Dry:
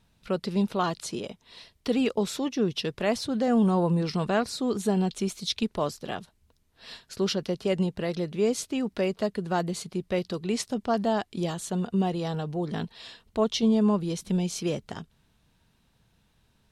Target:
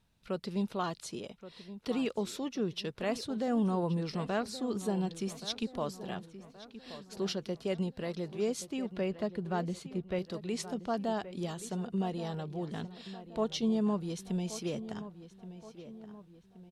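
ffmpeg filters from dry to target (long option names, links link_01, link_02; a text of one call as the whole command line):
ffmpeg -i in.wav -filter_complex "[0:a]asettb=1/sr,asplit=3[link_01][link_02][link_03];[link_01]atrim=end=8.964[link_04];[link_02]atrim=start=8.96:end=10.19,asetpts=PTS-STARTPTS,afade=type=in:duration=0.004:curve=qsin,afade=type=out:start_time=1.226:duration=0.004:curve=qsin,bass=frequency=250:gain=4,treble=frequency=4000:gain=-7[link_05];[link_03]atrim=start=10.186[link_06];[link_04][link_05]acrossfade=duration=0.004:curve1=hsin:curve2=qsin[link_07];[link_07][link_06]acrossfade=duration=0.004:curve1=qsin:curve2=hsin,asplit=2[link_08][link_09];[link_09]adelay=1125,lowpass=frequency=3000:poles=1,volume=-13.5dB,asplit=2[link_10][link_11];[link_11]adelay=1125,lowpass=frequency=3000:poles=1,volume=0.48,asplit=2[link_12][link_13];[link_13]adelay=1125,lowpass=frequency=3000:poles=1,volume=0.48,asplit=2[link_14][link_15];[link_15]adelay=1125,lowpass=frequency=3000:poles=1,volume=0.48,asplit=2[link_16][link_17];[link_17]adelay=1125,lowpass=frequency=3000:poles=1,volume=0.48[link_18];[link_08][link_10][link_12][link_14][link_16][link_18]amix=inputs=6:normalize=0,volume=-7.5dB" out.wav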